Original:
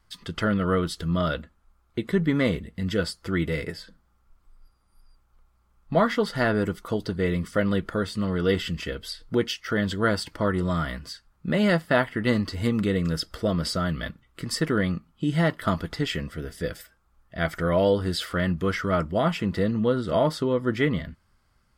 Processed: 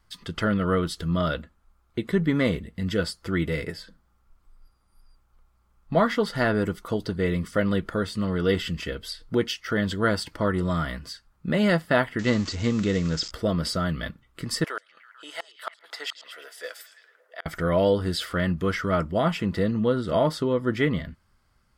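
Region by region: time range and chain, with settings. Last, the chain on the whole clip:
0:12.19–0:13.31: spike at every zero crossing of −23.5 dBFS + Butterworth low-pass 7,500 Hz 72 dB per octave
0:14.64–0:17.46: high-pass filter 590 Hz 24 dB per octave + gate with flip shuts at −20 dBFS, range −35 dB + echo through a band-pass that steps 111 ms, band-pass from 5,600 Hz, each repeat −0.7 octaves, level −8.5 dB
whole clip: no processing

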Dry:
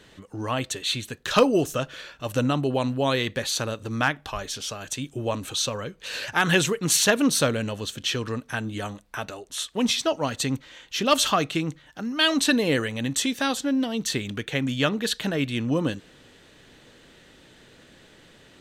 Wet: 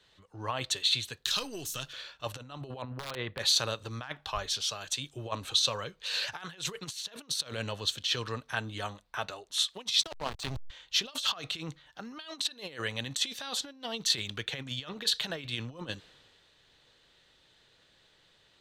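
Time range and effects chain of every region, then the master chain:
0:01.25–0:01.93: gain on one half-wave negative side −3 dB + drawn EQ curve 340 Hz 0 dB, 530 Hz −9 dB, 13,000 Hz +12 dB + downward compressor, threshold −27 dBFS
0:02.82–0:03.39: low-pass filter 1,700 Hz + wrap-around overflow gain 17 dB
0:10.03–0:10.70: high-shelf EQ 4,100 Hz +10 dB + slack as between gear wheels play −19.5 dBFS
whole clip: compressor whose output falls as the input rises −27 dBFS, ratio −0.5; octave-band graphic EQ 250/1,000/4,000 Hz −8/+4/+10 dB; multiband upward and downward expander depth 40%; level −9 dB

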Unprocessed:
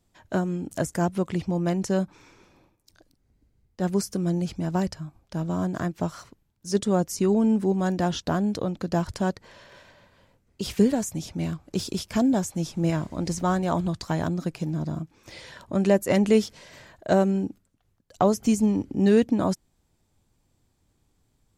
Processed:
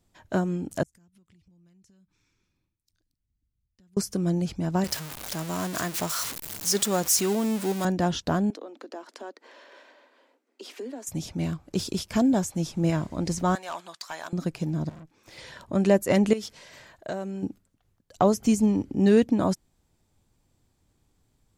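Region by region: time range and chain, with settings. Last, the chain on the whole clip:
0:00.83–0:03.97: guitar amp tone stack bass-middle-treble 6-0-2 + downward compressor 20 to 1, threshold −56 dBFS
0:04.84–0:07.85: converter with a step at zero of −32 dBFS + spectral tilt +3 dB per octave
0:08.50–0:11.07: Butterworth high-pass 250 Hz 72 dB per octave + high-shelf EQ 5,900 Hz −10 dB + downward compressor 2 to 1, threshold −44 dBFS
0:13.55–0:14.33: high-pass filter 1,000 Hz + gain into a clipping stage and back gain 27 dB
0:14.89–0:15.38: low-shelf EQ 69 Hz −11.5 dB + tube saturation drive 43 dB, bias 0.7
0:16.33–0:17.43: downward compressor 5 to 1, threshold −26 dBFS + low-shelf EQ 470 Hz −5.5 dB
whole clip: no processing

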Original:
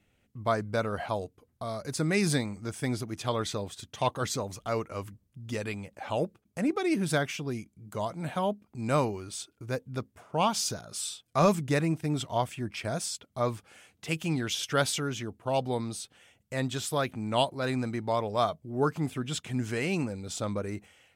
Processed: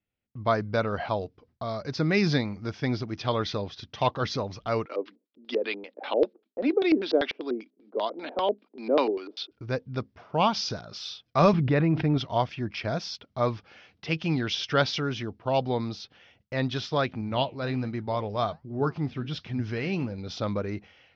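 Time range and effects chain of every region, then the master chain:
0:04.86–0:09.51: Butterworth high-pass 250 Hz 48 dB per octave + auto-filter low-pass square 5.1 Hz 460–3,800 Hz
0:11.53–0:12.18: high-frequency loss of the air 330 metres + envelope flattener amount 70%
0:17.21–0:20.18: flanger 1.3 Hz, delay 2.9 ms, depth 8.5 ms, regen −80% + low-shelf EQ 140 Hz +7 dB
whole clip: noise gate with hold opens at −56 dBFS; Butterworth low-pass 5,600 Hz 72 dB per octave; level +3 dB

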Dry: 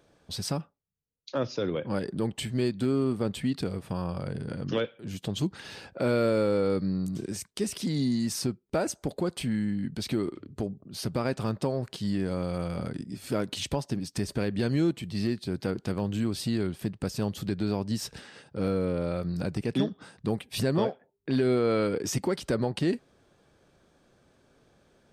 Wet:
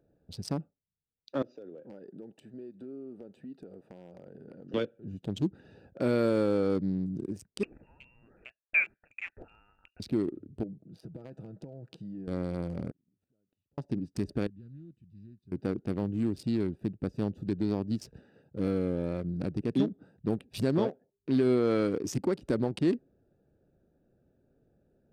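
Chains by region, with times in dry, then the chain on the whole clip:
0:01.42–0:04.74: high-pass filter 330 Hz + downward compressor 4 to 1, threshold −37 dBFS
0:07.63–0:10.00: auto-filter high-pass saw up 2.7 Hz 570–1,500 Hz + voice inversion scrambler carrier 3,000 Hz
0:10.63–0:12.28: high-pass filter 100 Hz 6 dB per octave + comb filter 6.2 ms, depth 42% + downward compressor 5 to 1, threshold −35 dBFS
0:12.91–0:13.78: downward compressor, threshold −39 dBFS + gate with flip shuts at −36 dBFS, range −30 dB
0:14.47–0:15.52: guitar amp tone stack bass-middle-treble 6-0-2 + highs frequency-modulated by the lows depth 0.15 ms
whole clip: adaptive Wiener filter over 41 samples; dynamic equaliser 300 Hz, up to +6 dB, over −41 dBFS, Q 1.6; level −3.5 dB

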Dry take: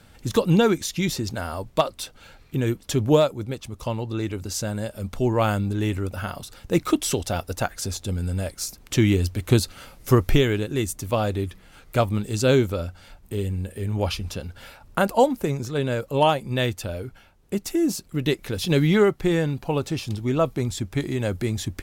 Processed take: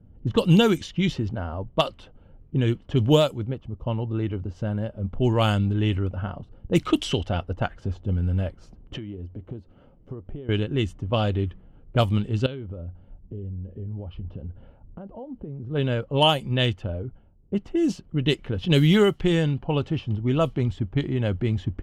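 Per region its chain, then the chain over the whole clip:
0:08.96–0:10.49: low-shelf EQ 150 Hz −11.5 dB + downward compressor 10 to 1, threshold −32 dBFS
0:12.46–0:15.71: low-pass filter 4,800 Hz 24 dB per octave + downward compressor 8 to 1, threshold −32 dBFS
whole clip: parametric band 3,000 Hz +14 dB 0.2 octaves; low-pass that shuts in the quiet parts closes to 370 Hz, open at −14.5 dBFS; bass and treble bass +5 dB, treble +4 dB; level −2 dB

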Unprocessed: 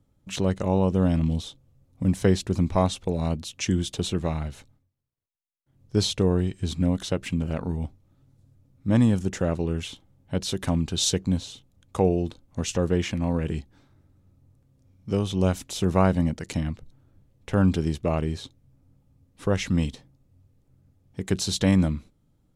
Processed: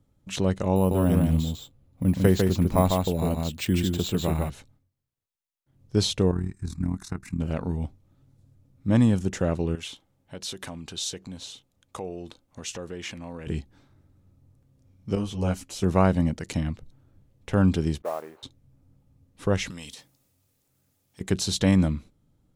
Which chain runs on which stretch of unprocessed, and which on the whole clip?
0:00.76–0:04.50: single-tap delay 150 ms −3.5 dB + bad sample-rate conversion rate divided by 4×, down filtered, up hold
0:06.31–0:07.40: amplitude modulation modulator 38 Hz, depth 55% + phaser with its sweep stopped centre 1,300 Hz, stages 4
0:09.75–0:13.47: downward compressor 2.5 to 1, threshold −30 dBFS + low-shelf EQ 250 Hz −12 dB
0:15.15–0:15.83: notch filter 3,600 Hz, Q 8.3 + string-ensemble chorus
0:18.02–0:18.43: running median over 25 samples + flat-topped band-pass 1,000 Hz, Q 0.79 + noise that follows the level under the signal 22 dB
0:19.70–0:21.21: spectral tilt +4 dB per octave + downward compressor, threshold −36 dBFS + transient designer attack −5 dB, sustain +3 dB
whole clip: no processing

